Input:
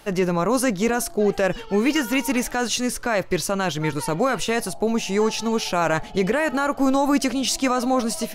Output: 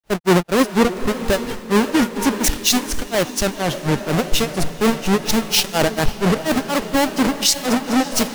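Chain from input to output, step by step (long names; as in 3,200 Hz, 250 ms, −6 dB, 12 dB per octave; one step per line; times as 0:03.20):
each half-wave held at its own peak
granular cloud 198 ms, grains 4.2 per second, pitch spread up and down by 0 semitones
feedback delay with all-pass diffusion 525 ms, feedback 61%, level −14 dB
boost into a limiter +19 dB
multiband upward and downward expander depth 100%
level −9 dB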